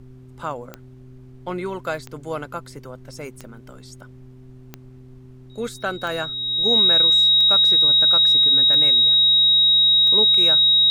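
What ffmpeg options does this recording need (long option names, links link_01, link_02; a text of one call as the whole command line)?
ffmpeg -i in.wav -af "adeclick=threshold=4,bandreject=frequency=128:width_type=h:width=4,bandreject=frequency=256:width_type=h:width=4,bandreject=frequency=384:width_type=h:width=4,bandreject=frequency=3800:width=30,agate=range=-21dB:threshold=-35dB" out.wav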